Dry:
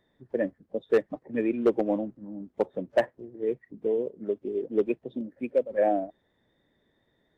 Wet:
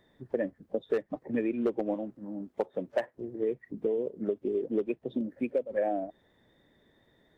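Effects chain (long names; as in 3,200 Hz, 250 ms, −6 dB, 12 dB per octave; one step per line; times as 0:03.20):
0:01.94–0:03.15: low-shelf EQ 270 Hz −8.5 dB
downward compressor 5 to 1, threshold −32 dBFS, peak gain reduction 13.5 dB
level +5 dB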